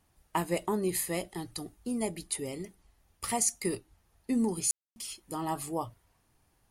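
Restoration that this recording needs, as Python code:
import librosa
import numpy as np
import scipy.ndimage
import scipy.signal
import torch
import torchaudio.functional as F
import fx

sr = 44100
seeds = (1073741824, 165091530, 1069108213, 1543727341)

y = fx.fix_declip(x, sr, threshold_db=-16.5)
y = fx.fix_ambience(y, sr, seeds[0], print_start_s=6.12, print_end_s=6.62, start_s=4.71, end_s=4.96)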